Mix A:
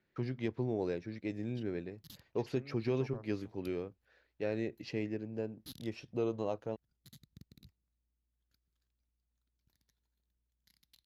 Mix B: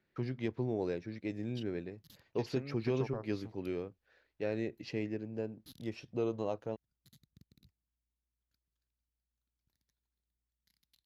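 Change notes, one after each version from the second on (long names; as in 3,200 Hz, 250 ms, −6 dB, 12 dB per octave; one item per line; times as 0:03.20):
second voice +7.5 dB
background −6.0 dB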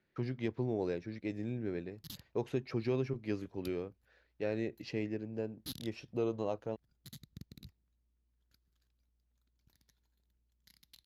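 second voice: muted
background +12.0 dB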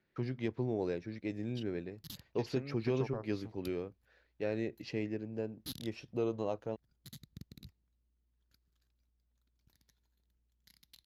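second voice: unmuted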